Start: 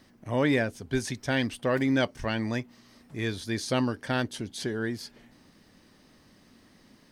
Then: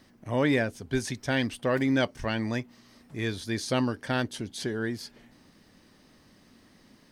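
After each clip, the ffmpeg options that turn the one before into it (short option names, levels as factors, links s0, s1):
-af anull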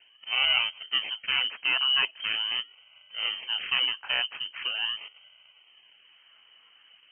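-af "acrusher=samples=21:mix=1:aa=0.000001:lfo=1:lforange=21:lforate=0.42,lowpass=f=2700:t=q:w=0.5098,lowpass=f=2700:t=q:w=0.6013,lowpass=f=2700:t=q:w=0.9,lowpass=f=2700:t=q:w=2.563,afreqshift=-3200"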